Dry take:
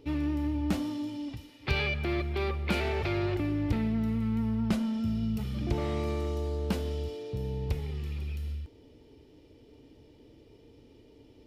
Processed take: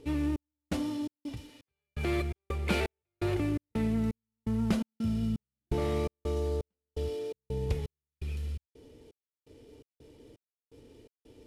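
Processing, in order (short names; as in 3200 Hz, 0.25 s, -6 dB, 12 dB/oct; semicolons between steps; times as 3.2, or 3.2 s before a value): CVSD 64 kbps; bell 460 Hz +5 dB 0.33 oct; step gate "xxxx....xxxx.." 168 bpm -60 dB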